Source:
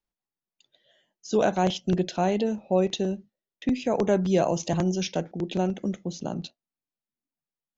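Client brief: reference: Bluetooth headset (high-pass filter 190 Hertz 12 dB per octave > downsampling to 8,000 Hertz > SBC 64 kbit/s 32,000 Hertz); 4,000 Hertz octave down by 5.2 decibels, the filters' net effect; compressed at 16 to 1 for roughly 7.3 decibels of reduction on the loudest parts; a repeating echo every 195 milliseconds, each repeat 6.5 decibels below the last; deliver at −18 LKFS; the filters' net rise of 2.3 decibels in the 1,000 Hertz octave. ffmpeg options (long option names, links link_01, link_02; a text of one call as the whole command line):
ffmpeg -i in.wav -af "equalizer=frequency=1000:width_type=o:gain=4,equalizer=frequency=4000:width_type=o:gain=-7,acompressor=threshold=-23dB:ratio=16,highpass=190,aecho=1:1:195|390|585|780|975|1170:0.473|0.222|0.105|0.0491|0.0231|0.0109,aresample=8000,aresample=44100,volume=13dB" -ar 32000 -c:a sbc -b:a 64k out.sbc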